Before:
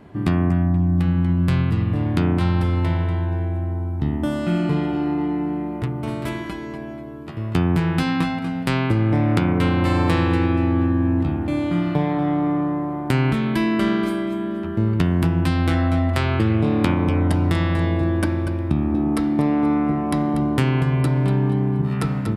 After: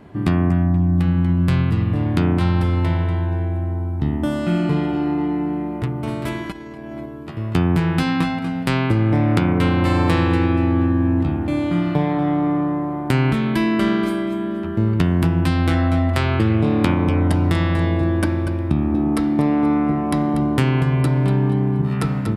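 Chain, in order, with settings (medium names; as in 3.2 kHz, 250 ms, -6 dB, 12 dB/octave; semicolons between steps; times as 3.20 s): 6.52–7.06 s: compressor with a negative ratio -34 dBFS, ratio -0.5; trim +1.5 dB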